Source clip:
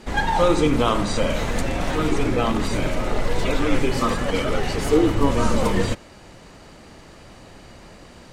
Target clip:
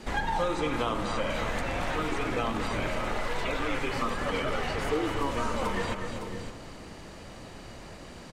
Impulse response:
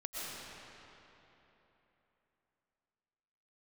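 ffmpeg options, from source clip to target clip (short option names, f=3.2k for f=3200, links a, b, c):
-filter_complex "[0:a]aecho=1:1:243|559:0.282|0.158,asplit=2[a][b];[1:a]atrim=start_sample=2205[c];[b][c]afir=irnorm=-1:irlink=0,volume=-20.5dB[d];[a][d]amix=inputs=2:normalize=0,acrossover=split=660|3100[e][f][g];[e]acompressor=threshold=-30dB:ratio=4[h];[f]acompressor=threshold=-29dB:ratio=4[i];[g]acompressor=threshold=-47dB:ratio=4[j];[h][i][j]amix=inputs=3:normalize=0,volume=-1.5dB"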